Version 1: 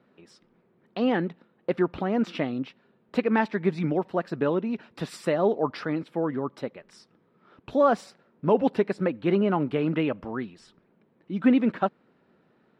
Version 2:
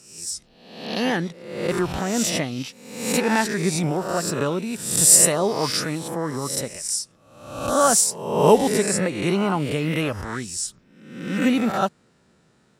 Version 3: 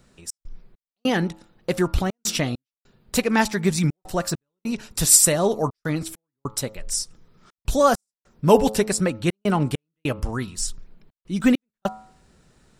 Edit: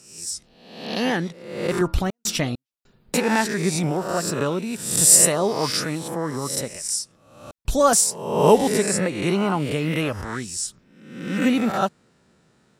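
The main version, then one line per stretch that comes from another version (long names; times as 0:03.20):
2
0:01.81–0:03.14: punch in from 3
0:07.51–0:07.93: punch in from 3
not used: 1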